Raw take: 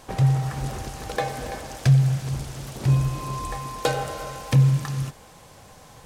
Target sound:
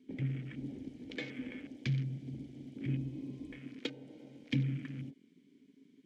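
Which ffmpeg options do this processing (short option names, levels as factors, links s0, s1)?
-filter_complex "[0:a]asettb=1/sr,asplit=3[s0][s1][s2];[s0]atrim=end=3.864[s3];[s1]atrim=start=3.86:end=4.5,asetpts=PTS-STARTPTS,afade=t=in:d=0.004:c=qsin,afade=t=out:st=0.636:d=0.004:c=qsin,acompressor=threshold=0.0251:ratio=2.5[s4];[s2]atrim=start=4.496[s5];[s3][s4]acrossfade=d=0.004:c1=hsin:c2=qsin[s6];[s6][s5]acrossfade=d=0.004:c1=qsin:c2=hsin,asplit=3[s7][s8][s9];[s7]bandpass=f=270:t=q:w=8,volume=1[s10];[s8]bandpass=f=2290:t=q:w=8,volume=0.501[s11];[s9]bandpass=f=3010:t=q:w=8,volume=0.355[s12];[s10][s11][s12]amix=inputs=3:normalize=0,acrossover=split=280|900|4700[s13][s14][s15][s16];[s16]acontrast=44[s17];[s13][s14][s15][s17]amix=inputs=4:normalize=0,afwtdn=0.00224,volume=1.58"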